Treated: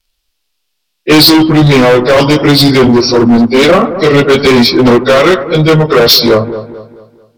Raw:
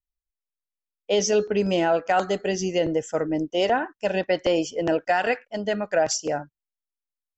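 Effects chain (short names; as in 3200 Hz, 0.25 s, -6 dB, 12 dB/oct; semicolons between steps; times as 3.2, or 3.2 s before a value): pitch shift by moving bins -5 st; band shelf 3700 Hz +8.5 dB 1.3 oct; overloaded stage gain 26 dB; on a send: dark delay 0.219 s, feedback 39%, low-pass 1200 Hz, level -14.5 dB; on the sum: maximiser +27.5 dB; gain -1 dB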